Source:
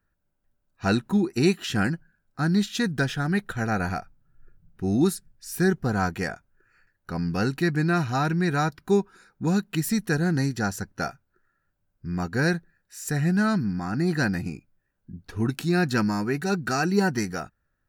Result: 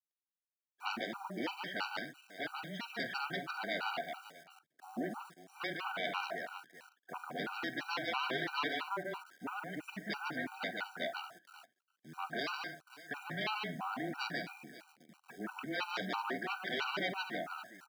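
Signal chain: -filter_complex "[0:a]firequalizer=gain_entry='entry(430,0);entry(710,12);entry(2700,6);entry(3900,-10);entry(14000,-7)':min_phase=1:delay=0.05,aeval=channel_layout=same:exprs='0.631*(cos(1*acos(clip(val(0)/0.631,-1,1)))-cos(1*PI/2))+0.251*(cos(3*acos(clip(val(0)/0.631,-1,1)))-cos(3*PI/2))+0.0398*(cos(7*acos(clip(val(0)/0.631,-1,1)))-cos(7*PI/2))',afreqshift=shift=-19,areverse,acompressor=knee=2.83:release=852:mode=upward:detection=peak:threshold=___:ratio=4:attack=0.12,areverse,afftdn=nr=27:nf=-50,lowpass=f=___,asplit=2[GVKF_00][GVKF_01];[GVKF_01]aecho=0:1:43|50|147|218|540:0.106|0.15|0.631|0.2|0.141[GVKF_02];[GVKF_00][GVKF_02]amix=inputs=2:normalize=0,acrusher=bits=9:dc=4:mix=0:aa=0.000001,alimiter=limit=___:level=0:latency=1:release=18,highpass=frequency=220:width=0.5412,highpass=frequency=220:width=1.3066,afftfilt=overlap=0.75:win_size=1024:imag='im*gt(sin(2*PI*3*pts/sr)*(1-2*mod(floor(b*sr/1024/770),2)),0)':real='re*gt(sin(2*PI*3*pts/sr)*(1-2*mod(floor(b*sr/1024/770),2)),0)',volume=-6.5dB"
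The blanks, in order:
-30dB, 4.5k, -14.5dB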